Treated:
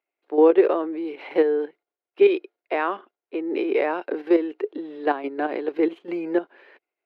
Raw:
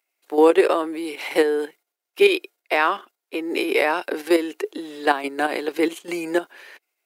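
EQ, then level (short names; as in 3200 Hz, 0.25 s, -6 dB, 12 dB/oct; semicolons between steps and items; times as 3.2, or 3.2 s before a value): air absorption 360 m; bell 380 Hz +6.5 dB 1.9 oct; -5.5 dB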